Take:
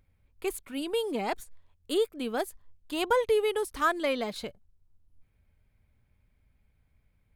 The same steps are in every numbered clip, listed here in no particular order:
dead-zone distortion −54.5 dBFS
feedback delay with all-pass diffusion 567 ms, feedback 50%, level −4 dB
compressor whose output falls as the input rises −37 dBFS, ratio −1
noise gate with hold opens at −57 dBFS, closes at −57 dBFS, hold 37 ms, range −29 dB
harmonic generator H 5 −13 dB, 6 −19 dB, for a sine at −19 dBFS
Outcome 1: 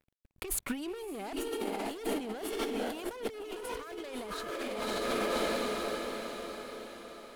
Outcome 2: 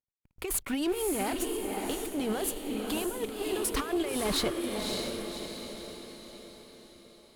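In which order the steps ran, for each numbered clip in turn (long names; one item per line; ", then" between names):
harmonic generator, then dead-zone distortion, then feedback delay with all-pass diffusion, then compressor whose output falls as the input rises, then noise gate with hold
compressor whose output falls as the input rises, then dead-zone distortion, then noise gate with hold, then feedback delay with all-pass diffusion, then harmonic generator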